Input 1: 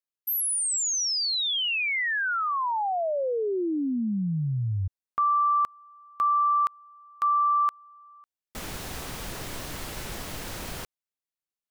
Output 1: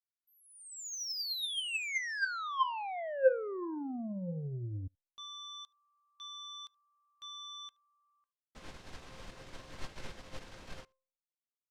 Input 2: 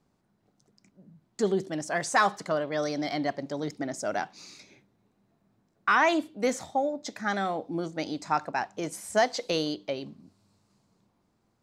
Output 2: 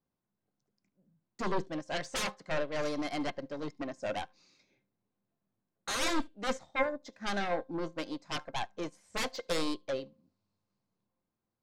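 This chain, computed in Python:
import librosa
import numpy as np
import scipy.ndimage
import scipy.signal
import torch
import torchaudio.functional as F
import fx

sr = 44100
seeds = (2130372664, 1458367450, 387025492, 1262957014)

y = scipy.signal.sosfilt(scipy.signal.butter(2, 5500.0, 'lowpass', fs=sr, output='sos'), x)
y = fx.fold_sine(y, sr, drive_db=14, ceiling_db=-12.0)
y = fx.comb_fb(y, sr, f0_hz=530.0, decay_s=0.46, harmonics='all', damping=0.4, mix_pct=80)
y = y + 10.0 ** (-21.0 / 20.0) * np.pad(y, (int(74 * sr / 1000.0), 0))[:len(y)]
y = fx.upward_expand(y, sr, threshold_db=-38.0, expansion=2.5)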